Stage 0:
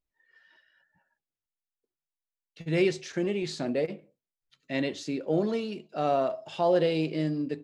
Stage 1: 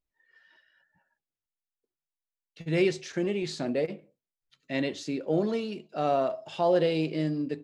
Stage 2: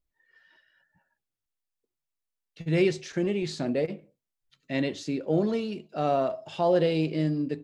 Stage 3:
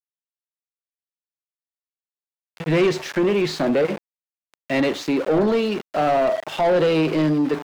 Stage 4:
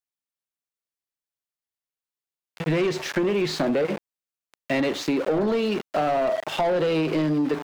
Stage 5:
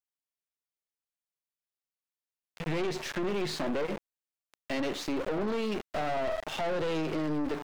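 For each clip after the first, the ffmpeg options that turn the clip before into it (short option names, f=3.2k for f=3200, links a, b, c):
-af anull
-af "lowshelf=f=160:g=7.5"
-filter_complex "[0:a]acrossover=split=350|3000[a][b][c];[b]acompressor=threshold=-29dB:ratio=2[d];[a][d][c]amix=inputs=3:normalize=0,aeval=exprs='val(0)*gte(abs(val(0)),0.00794)':c=same,asplit=2[e][f];[f]highpass=f=720:p=1,volume=21dB,asoftclip=type=tanh:threshold=-14.5dB[g];[e][g]amix=inputs=2:normalize=0,lowpass=f=1.6k:p=1,volume=-6dB,volume=4.5dB"
-af "acompressor=threshold=-21dB:ratio=6,volume=1dB"
-af "aeval=exprs='(tanh(17.8*val(0)+0.6)-tanh(0.6))/17.8':c=same,volume=-3dB"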